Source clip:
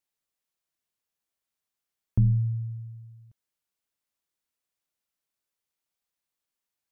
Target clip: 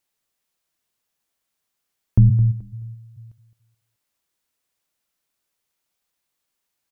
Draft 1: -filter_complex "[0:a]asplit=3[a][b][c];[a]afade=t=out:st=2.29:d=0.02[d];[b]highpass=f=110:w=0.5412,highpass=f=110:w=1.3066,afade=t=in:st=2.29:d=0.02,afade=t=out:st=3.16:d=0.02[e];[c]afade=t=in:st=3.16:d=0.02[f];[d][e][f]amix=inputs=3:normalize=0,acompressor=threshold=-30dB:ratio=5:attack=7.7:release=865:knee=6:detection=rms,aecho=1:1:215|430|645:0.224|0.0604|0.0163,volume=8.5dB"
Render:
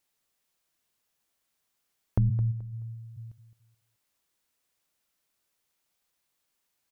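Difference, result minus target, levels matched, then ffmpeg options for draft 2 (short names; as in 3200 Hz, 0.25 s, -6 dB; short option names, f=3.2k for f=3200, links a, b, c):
compressor: peak gain reduction +12 dB
-filter_complex "[0:a]asplit=3[a][b][c];[a]afade=t=out:st=2.29:d=0.02[d];[b]highpass=f=110:w=0.5412,highpass=f=110:w=1.3066,afade=t=in:st=2.29:d=0.02,afade=t=out:st=3.16:d=0.02[e];[c]afade=t=in:st=3.16:d=0.02[f];[d][e][f]amix=inputs=3:normalize=0,aecho=1:1:215|430|645:0.224|0.0604|0.0163,volume=8.5dB"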